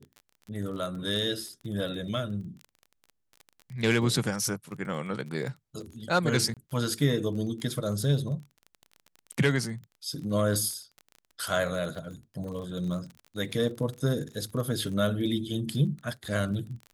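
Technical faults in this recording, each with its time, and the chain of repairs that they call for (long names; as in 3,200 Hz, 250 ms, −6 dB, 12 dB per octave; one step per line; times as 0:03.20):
surface crackle 28 per second −37 dBFS
0:06.54–0:06.57: drop-out 27 ms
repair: click removal
repair the gap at 0:06.54, 27 ms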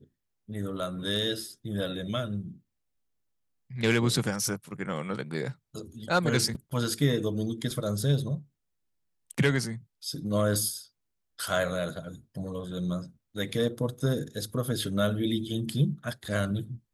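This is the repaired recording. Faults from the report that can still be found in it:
none of them is left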